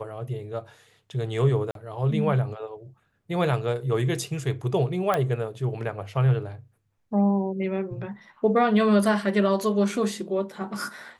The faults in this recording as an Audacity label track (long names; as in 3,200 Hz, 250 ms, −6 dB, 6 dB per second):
1.710000	1.750000	drop-out 42 ms
5.140000	5.140000	click −11 dBFS